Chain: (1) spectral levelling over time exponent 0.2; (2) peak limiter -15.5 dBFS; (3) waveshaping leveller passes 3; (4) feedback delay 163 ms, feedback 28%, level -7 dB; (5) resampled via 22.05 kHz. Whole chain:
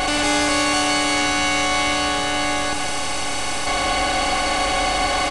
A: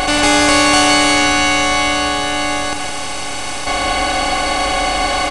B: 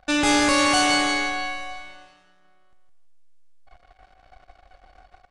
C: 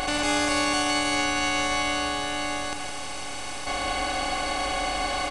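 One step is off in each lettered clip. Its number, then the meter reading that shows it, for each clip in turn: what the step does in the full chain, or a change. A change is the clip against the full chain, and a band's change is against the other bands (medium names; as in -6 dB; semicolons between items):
2, crest factor change +3.0 dB; 1, 250 Hz band +5.0 dB; 3, crest factor change +5.5 dB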